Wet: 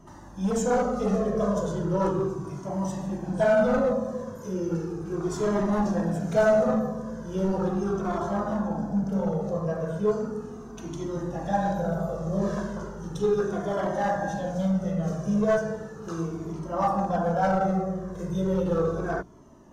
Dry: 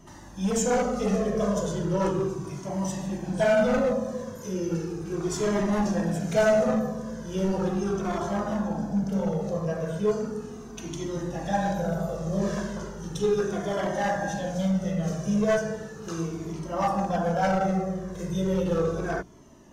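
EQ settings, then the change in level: resonant high shelf 1.7 kHz -6 dB, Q 1.5; dynamic bell 3.9 kHz, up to +3 dB, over -57 dBFS, Q 4.4; 0.0 dB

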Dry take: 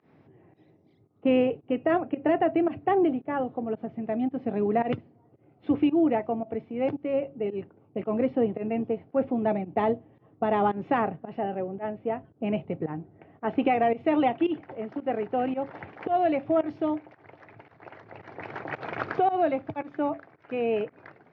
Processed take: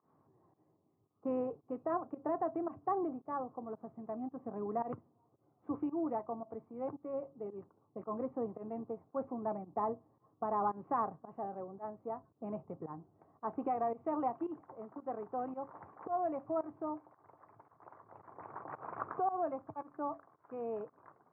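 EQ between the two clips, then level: four-pole ladder low-pass 1.2 kHz, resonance 70%; -3.0 dB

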